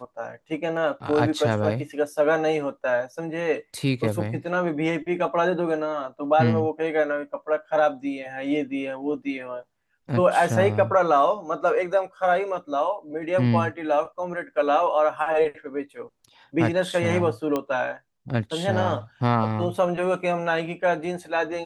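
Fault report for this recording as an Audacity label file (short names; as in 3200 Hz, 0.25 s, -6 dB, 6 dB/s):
17.560000	17.560000	pop -13 dBFS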